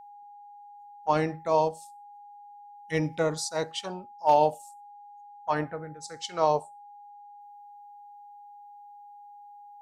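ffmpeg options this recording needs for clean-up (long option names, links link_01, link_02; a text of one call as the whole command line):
ffmpeg -i in.wav -af "bandreject=frequency=820:width=30" out.wav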